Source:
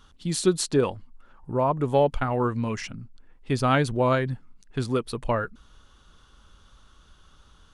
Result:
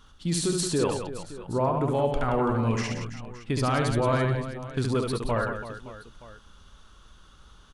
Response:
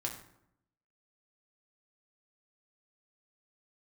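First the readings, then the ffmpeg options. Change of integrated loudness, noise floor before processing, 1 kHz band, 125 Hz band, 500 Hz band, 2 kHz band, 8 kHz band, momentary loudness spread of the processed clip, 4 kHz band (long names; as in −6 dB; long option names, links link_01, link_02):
−1.5 dB, −57 dBFS, −1.5 dB, +0.5 dB, −2.0 dB, −1.0 dB, +0.5 dB, 14 LU, 0.0 dB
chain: -filter_complex "[0:a]alimiter=limit=-18dB:level=0:latency=1:release=42,asplit=2[link_01][link_02];[link_02]aecho=0:1:70|175|332.5|568.8|923.1:0.631|0.398|0.251|0.158|0.1[link_03];[link_01][link_03]amix=inputs=2:normalize=0"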